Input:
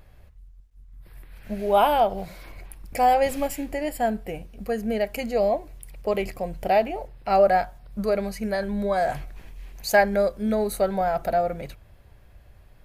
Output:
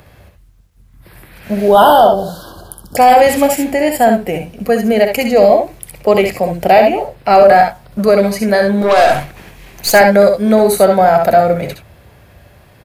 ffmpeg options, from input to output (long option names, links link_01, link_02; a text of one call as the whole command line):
ffmpeg -i in.wav -filter_complex "[0:a]highpass=100,asettb=1/sr,asplit=3[link_01][link_02][link_03];[link_01]atrim=end=8.814[link_04];[link_02]atrim=start=8.81:end=9.91,asetpts=PTS-STARTPTS,afade=type=in:duration=0.004:curve=qsin,afade=type=out:start_time=1.096:duration=0.004:curve=qsin,aeval=exprs='0.211*(cos(1*acos(clip(val(0)/0.211,-1,1)))-cos(1*PI/2))+0.0211*(cos(8*acos(clip(val(0)/0.211,-1,1)))-cos(8*PI/2))':channel_layout=same[link_05];[link_03]atrim=start=9.906[link_06];[link_04][link_05]acrossfade=duration=0.004:curve1=hsin:curve2=qsin[link_07];[link_07][link_06]acrossfade=duration=0.004:curve1=qsin:curve2=hsin,acrossover=split=180|5500[link_08][link_09][link_10];[link_08]aeval=exprs='0.0158*(abs(mod(val(0)/0.0158+3,4)-2)-1)':channel_layout=same[link_11];[link_11][link_09][link_10]amix=inputs=3:normalize=0,asettb=1/sr,asplit=3[link_12][link_13][link_14];[link_12]atrim=end=1.684[link_15];[link_13]atrim=start=1.68:end=2.97,asetpts=PTS-STARTPTS,afade=type=in:duration=0.004:curve=qsin,afade=type=out:start_time=1.286:duration=0.004:curve=qsin,asuperstop=centerf=2200:order=20:qfactor=1.7[link_16];[link_14]atrim=start=2.966[link_17];[link_15][link_16]acrossfade=duration=0.004:curve1=hsin:curve2=qsin[link_18];[link_18][link_17]acrossfade=duration=0.004:curve1=qsin:curve2=hsin,asplit=2[link_19][link_20];[link_20]aecho=0:1:64|76:0.447|0.282[link_21];[link_19][link_21]amix=inputs=2:normalize=0,apsyclip=15.5dB,volume=-1.5dB" out.wav